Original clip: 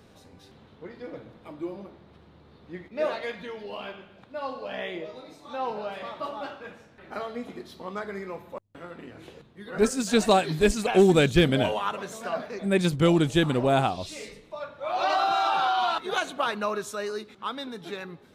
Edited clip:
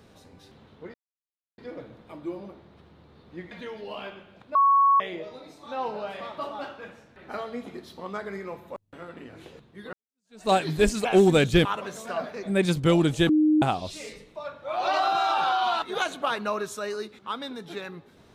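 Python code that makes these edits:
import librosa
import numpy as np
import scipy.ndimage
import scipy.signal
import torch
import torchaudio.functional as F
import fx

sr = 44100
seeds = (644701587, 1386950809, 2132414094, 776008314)

y = fx.edit(x, sr, fx.insert_silence(at_s=0.94, length_s=0.64),
    fx.cut(start_s=2.87, length_s=0.46),
    fx.bleep(start_s=4.37, length_s=0.45, hz=1110.0, db=-15.5),
    fx.fade_in_span(start_s=9.75, length_s=0.59, curve='exp'),
    fx.cut(start_s=11.47, length_s=0.34),
    fx.bleep(start_s=13.45, length_s=0.33, hz=307.0, db=-16.5), tone=tone)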